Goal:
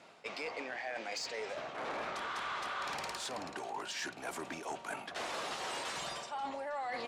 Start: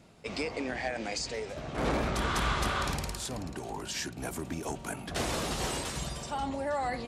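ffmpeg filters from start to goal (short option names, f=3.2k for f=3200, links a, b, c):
-af "highpass=740,aemphasis=mode=reproduction:type=bsi,areverse,acompressor=threshold=-43dB:ratio=6,areverse,asoftclip=type=tanh:threshold=-36.5dB,volume=7dB"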